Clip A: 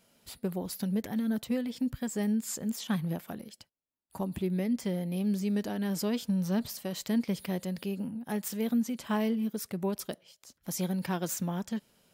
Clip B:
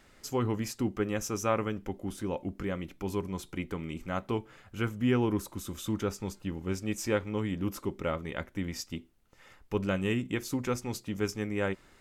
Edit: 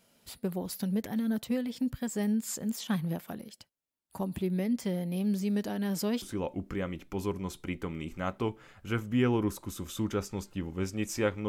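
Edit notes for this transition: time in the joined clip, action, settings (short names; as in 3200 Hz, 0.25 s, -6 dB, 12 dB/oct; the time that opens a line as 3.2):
clip A
6.22 switch to clip B from 2.11 s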